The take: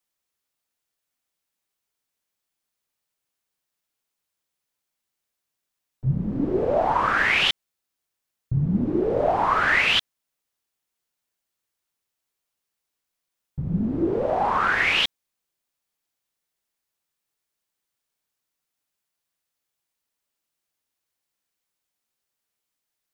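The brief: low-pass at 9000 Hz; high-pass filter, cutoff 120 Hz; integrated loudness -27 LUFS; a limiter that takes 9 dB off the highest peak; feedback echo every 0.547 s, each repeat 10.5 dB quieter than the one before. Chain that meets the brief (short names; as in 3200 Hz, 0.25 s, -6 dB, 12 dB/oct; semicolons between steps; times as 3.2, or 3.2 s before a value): HPF 120 Hz; LPF 9000 Hz; limiter -18 dBFS; feedback echo 0.547 s, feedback 30%, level -10.5 dB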